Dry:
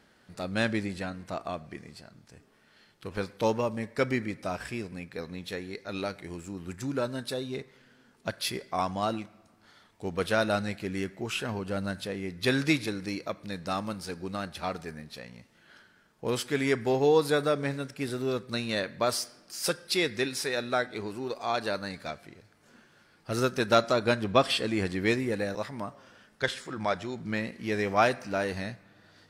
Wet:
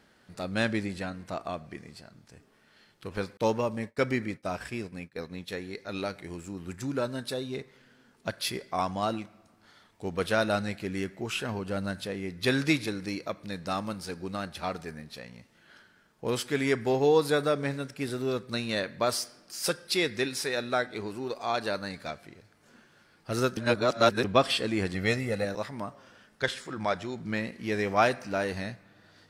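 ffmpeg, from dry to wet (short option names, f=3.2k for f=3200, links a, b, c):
-filter_complex "[0:a]asettb=1/sr,asplit=3[a][b][c];[a]atrim=end=3.374[d];[b]atrim=start=3.37:end=5.55,asetpts=PTS-STARTPTS,afade=t=in:d=0.004:c=qsin,afade=t=out:st=2.176:d=0.004:c=qsin,agate=range=-33dB:threshold=-40dB:ratio=3:release=100:detection=peak[e];[c]atrim=start=5.546[f];[d][e]acrossfade=d=0.004:c1=hsin:c2=qsin[g];[g][f]acrossfade=d=0.004:c1=qsin:c2=hsin,asettb=1/sr,asplit=3[h][i][j];[h]atrim=end=24.944[k];[i]atrim=start=24.94:end=25.45,asetpts=PTS-STARTPTS,afade=t=in:d=0.004:c=qsin,afade=t=out:st=0.506:d=0.004:c=qsin,aecho=1:1:1.5:0.65,atrim=end_sample=22491[l];[j]atrim=start=25.446[m];[k][l]acrossfade=d=0.004:c1=hsin:c2=qsin[n];[n][m]acrossfade=d=0.004:c1=qsin:c2=hsin,asplit=3[o][p][q];[o]atrim=end=23.572[r];[p]atrim=start=23.568:end=24.242,asetpts=PTS-STARTPTS,areverse[s];[q]atrim=start=24.238[t];[r][s]acrossfade=d=0.004:c1=hsin:c2=hsin[u];[u][t]acrossfade=d=0.004:c1=hsin:c2=hsin"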